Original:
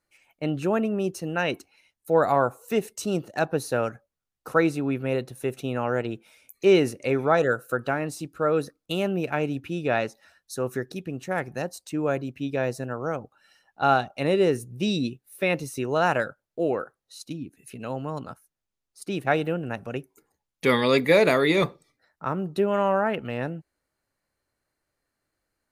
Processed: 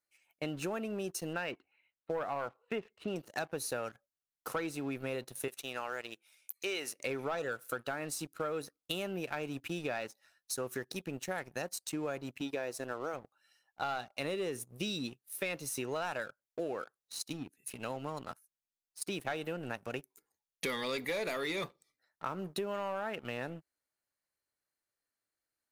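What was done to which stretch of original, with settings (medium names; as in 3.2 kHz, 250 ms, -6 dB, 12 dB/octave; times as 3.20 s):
1.33–3.16 s: inverse Chebyshev low-pass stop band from 5.6 kHz
5.48–6.99 s: high-pass 1.1 kHz 6 dB/octave
12.41–13.14 s: resonant low shelf 240 Hz -6.5 dB, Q 1.5
whole clip: tilt EQ +2 dB/octave; waveshaping leveller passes 2; compression, threshold -25 dBFS; trim -9 dB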